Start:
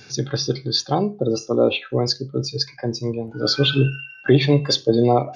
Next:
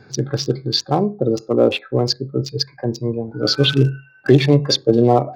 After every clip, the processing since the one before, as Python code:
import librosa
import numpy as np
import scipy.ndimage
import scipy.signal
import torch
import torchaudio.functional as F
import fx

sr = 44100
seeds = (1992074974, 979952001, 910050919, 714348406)

y = fx.wiener(x, sr, points=15)
y = y * 10.0 ** (3.0 / 20.0)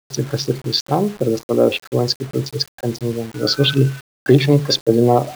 y = fx.quant_dither(x, sr, seeds[0], bits=6, dither='none')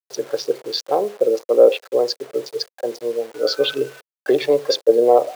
y = fx.highpass_res(x, sr, hz=500.0, q=3.9)
y = y * 10.0 ** (-5.5 / 20.0)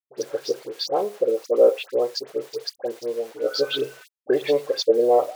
y = fx.dispersion(x, sr, late='highs', ms=78.0, hz=1600.0)
y = y * 10.0 ** (-4.0 / 20.0)